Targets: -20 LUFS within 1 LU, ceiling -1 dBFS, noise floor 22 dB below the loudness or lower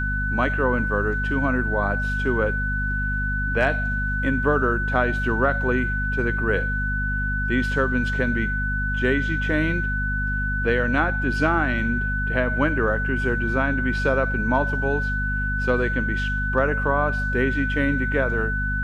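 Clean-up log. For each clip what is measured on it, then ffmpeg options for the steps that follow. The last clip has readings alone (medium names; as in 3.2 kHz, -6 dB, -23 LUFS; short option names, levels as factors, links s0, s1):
hum 50 Hz; highest harmonic 250 Hz; hum level -24 dBFS; steady tone 1.5 kHz; tone level -25 dBFS; loudness -22.5 LUFS; peak level -6.0 dBFS; loudness target -20.0 LUFS
-> -af "bandreject=f=50:t=h:w=6,bandreject=f=100:t=h:w=6,bandreject=f=150:t=h:w=6,bandreject=f=200:t=h:w=6,bandreject=f=250:t=h:w=6"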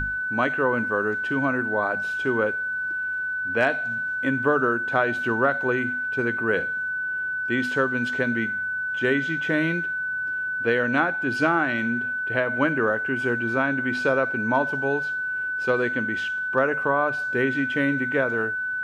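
hum not found; steady tone 1.5 kHz; tone level -25 dBFS
-> -af "bandreject=f=1500:w=30"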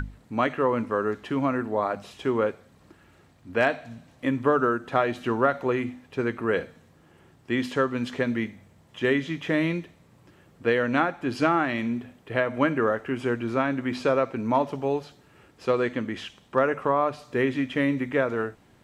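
steady tone not found; loudness -26.5 LUFS; peak level -8.0 dBFS; loudness target -20.0 LUFS
-> -af "volume=2.11"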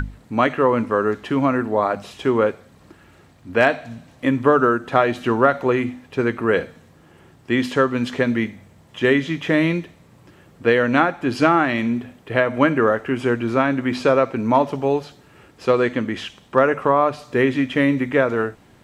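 loudness -20.0 LUFS; peak level -1.5 dBFS; noise floor -51 dBFS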